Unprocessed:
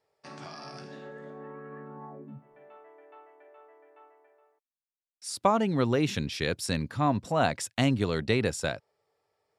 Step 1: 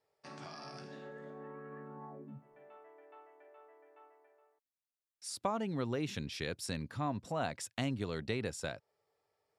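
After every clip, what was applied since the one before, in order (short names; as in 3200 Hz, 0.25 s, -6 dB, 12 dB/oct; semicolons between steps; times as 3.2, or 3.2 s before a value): compressor 1.5:1, threshold -38 dBFS, peak gain reduction 7.5 dB; gain -4.5 dB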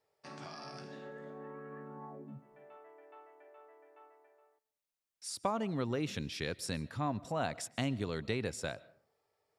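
reverb RT60 0.55 s, pre-delay 91 ms, DRR 21 dB; gain +1 dB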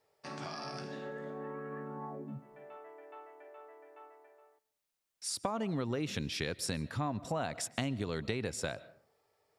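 compressor 6:1, threshold -36 dBFS, peak gain reduction 8.5 dB; gain +5 dB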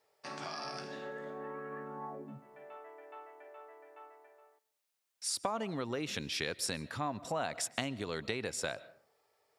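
low shelf 260 Hz -11 dB; gain +2 dB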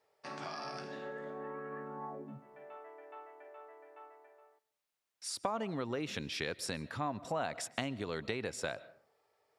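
high shelf 4100 Hz -7 dB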